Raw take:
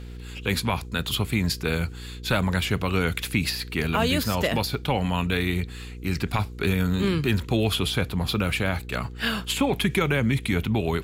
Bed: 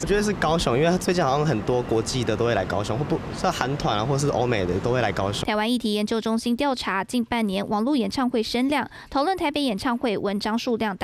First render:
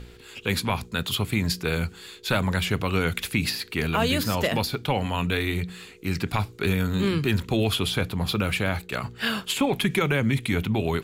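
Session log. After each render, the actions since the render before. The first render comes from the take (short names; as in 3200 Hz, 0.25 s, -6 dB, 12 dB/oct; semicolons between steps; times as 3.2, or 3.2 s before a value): de-hum 60 Hz, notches 5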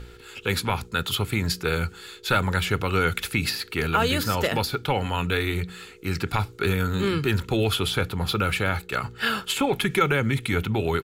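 bell 1400 Hz +7.5 dB 0.28 oct; comb 2.3 ms, depth 30%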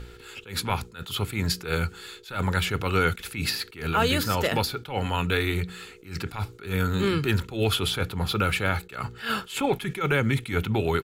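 attack slew limiter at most 150 dB/s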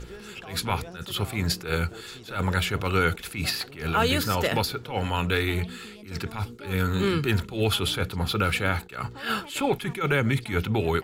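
add bed -22.5 dB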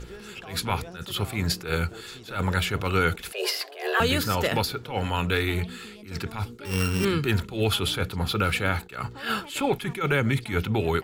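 3.32–4 frequency shift +290 Hz; 6.65–7.05 sample sorter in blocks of 16 samples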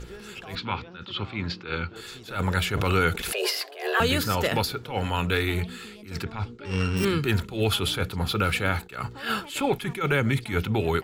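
0.55–1.96 speaker cabinet 110–4000 Hz, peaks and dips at 150 Hz -8 dB, 440 Hz -6 dB, 680 Hz -9 dB, 1800 Hz -4 dB; 2.77–3.63 backwards sustainer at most 29 dB/s; 6.24–6.97 air absorption 120 m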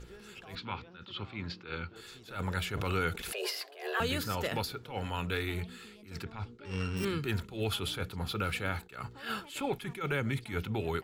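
gain -9 dB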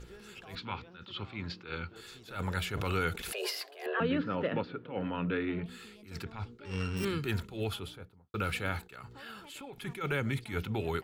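3.86–5.66 speaker cabinet 150–2700 Hz, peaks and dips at 170 Hz +8 dB, 280 Hz +9 dB, 530 Hz +5 dB, 800 Hz -5 dB, 2200 Hz -4 dB; 7.44–8.34 studio fade out; 8.9–9.78 compressor, threshold -43 dBFS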